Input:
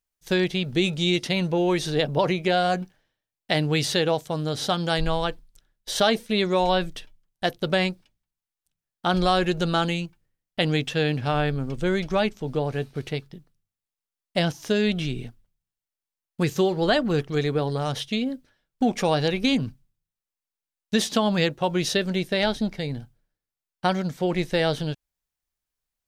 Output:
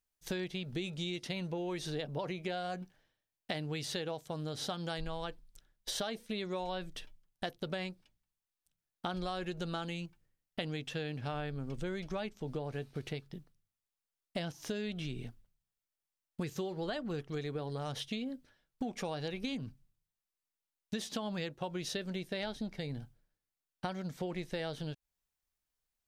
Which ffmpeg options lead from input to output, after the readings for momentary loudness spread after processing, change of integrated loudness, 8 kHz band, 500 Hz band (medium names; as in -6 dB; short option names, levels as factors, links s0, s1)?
7 LU, -15.0 dB, -12.0 dB, -15.5 dB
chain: -af "acompressor=threshold=0.02:ratio=5,volume=0.75"